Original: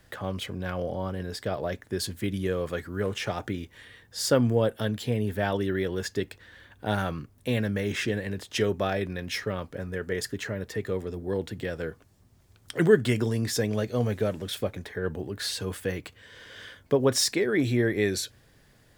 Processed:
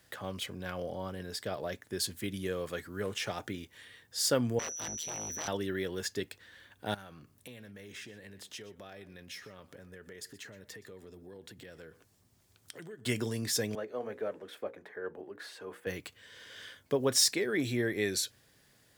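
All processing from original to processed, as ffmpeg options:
-filter_complex "[0:a]asettb=1/sr,asplit=3[a][b][c];[a]atrim=end=4.594[d];[b]atrim=start=4.59:end=5.48,asetpts=PTS-STARTPTS,afade=t=in:d=0.004:c=qsin,afade=t=out:st=0.886:d=0.004:c=qsin,aeval=exprs='0.0473*(abs(mod(val(0)/0.0473+3,4)-2)-1)':c=same,aeval=exprs='val(0)+0.02*sin(2*PI*5900*n/s)':c=same,tremolo=f=160:d=0.857[e];[c]atrim=start=5.476[f];[d][e]acrossfade=d=0.004:c1=hsin:c2=qsin[g];[g][f]acrossfade=d=0.004:c1=qsin:c2=hsin,asettb=1/sr,asplit=3[h][i][j];[h]atrim=end=6.944[k];[i]atrim=start=6.94:end=13.06,asetpts=PTS-STARTPTS,afade=t=in:d=0.004:c=qsin,afade=t=out:st=6.116:d=0.004:c=qsin,acompressor=threshold=-41dB:ratio=4:attack=3.2:release=140:knee=1:detection=peak,aecho=1:1:122:0.133,atrim=end_sample=269892[l];[j]atrim=start=13.056[m];[k][l]acrossfade=d=0.004:c1=hsin:c2=qsin[n];[n][m]acrossfade=d=0.004:c1=qsin:c2=hsin,asettb=1/sr,asplit=3[o][p][q];[o]atrim=end=13.754[r];[p]atrim=start=13.75:end=15.87,asetpts=PTS-STARTPTS,afade=t=in:d=0.004:c=qsin,afade=t=out:st=2.116:d=0.004:c=qsin,acrossover=split=280 2000:gain=0.112 1 0.1[s][t][u];[s][t][u]amix=inputs=3:normalize=0,bandreject=f=60:t=h:w=6,bandreject=f=120:t=h:w=6,bandreject=f=180:t=h:w=6,bandreject=f=240:t=h:w=6,bandreject=f=300:t=h:w=6,bandreject=f=360:t=h:w=6,bandreject=f=420:t=h:w=6,bandreject=f=480:t=h:w=6,bandreject=f=540:t=h:w=6[v];[q]atrim=start=15.866[w];[r][v]acrossfade=d=0.004:c1=hsin:c2=qsin[x];[x][w]acrossfade=d=0.004:c1=qsin:c2=hsin,highpass=f=120:p=1,highshelf=f=2.8k:g=7.5,volume=-6.5dB"

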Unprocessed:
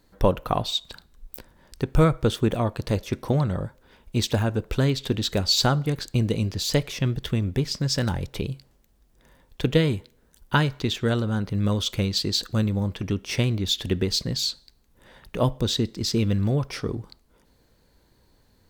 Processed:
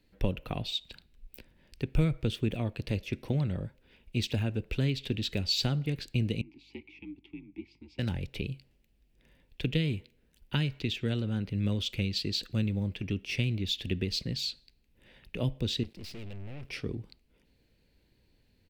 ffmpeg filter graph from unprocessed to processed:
-filter_complex "[0:a]asettb=1/sr,asplit=3[a][b][c];[a]atrim=end=6.414[d];[b]atrim=start=6.41:end=7.99,asetpts=PTS-STARTPTS,afade=t=in:d=0.004:c=qsin,afade=t=out:st=1.576:d=0.004:c=qsin,afreqshift=-62,asplit=3[e][f][g];[e]bandpass=f=300:t=q:w=8,volume=0dB[h];[f]bandpass=f=870:t=q:w=8,volume=-6dB[i];[g]bandpass=f=2.24k:t=q:w=8,volume=-9dB[j];[h][i][j]amix=inputs=3:normalize=0,aeval=exprs='val(0)+0.000708*(sin(2*PI*50*n/s)+sin(2*PI*2*50*n/s)/2+sin(2*PI*3*50*n/s)/3+sin(2*PI*4*50*n/s)/4+sin(2*PI*5*50*n/s)/5)':c=same[k];[c]atrim=start=7.986[l];[d][k]acrossfade=d=0.004:c1=hsin:c2=qsin[m];[m][l]acrossfade=d=0.004:c1=qsin:c2=hsin,asettb=1/sr,asplit=3[n][o][p];[n]atrim=end=15.834[q];[o]atrim=start=15.83:end=16.69,asetpts=PTS-STARTPTS,afade=t=in:d=0.004:c=qsin,afade=t=out:st=0.856:d=0.004:c=qsin,equalizer=f=84:t=o:w=0.48:g=4.5,aeval=exprs='val(0)*gte(abs(val(0)),0.00316)':c=same,aeval=exprs='(tanh(56.2*val(0)+0.75)-tanh(0.75))/56.2':c=same[r];[p]atrim=start=16.686[s];[q][r]acrossfade=d=0.004:c1=hsin:c2=qsin[t];[t][s]acrossfade=d=0.004:c1=qsin:c2=hsin,firequalizer=gain_entry='entry(280,0);entry(1100,-11);entry(2600,13);entry(6300,-6)':delay=0.05:min_phase=1,acrossover=split=260|3000[u][v][w];[v]acompressor=threshold=-26dB:ratio=6[x];[u][x][w]amix=inputs=3:normalize=0,equalizer=f=3.4k:t=o:w=0.95:g=-8.5,volume=-6dB"

